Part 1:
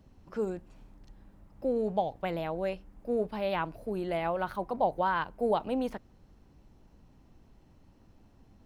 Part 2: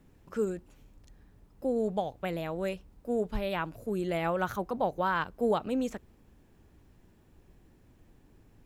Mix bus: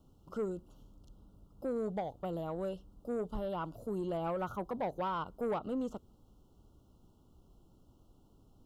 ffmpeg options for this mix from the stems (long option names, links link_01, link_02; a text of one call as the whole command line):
ffmpeg -i stem1.wav -i stem2.wav -filter_complex "[0:a]acompressor=threshold=-36dB:ratio=6,volume=-9dB[link_01];[1:a]volume=-5dB[link_02];[link_01][link_02]amix=inputs=2:normalize=0,asuperstop=centerf=2000:order=20:qfactor=1.5,acrossover=split=2500[link_03][link_04];[link_04]acompressor=threshold=-60dB:ratio=4:attack=1:release=60[link_05];[link_03][link_05]amix=inputs=2:normalize=0,asoftclip=type=tanh:threshold=-28.5dB" out.wav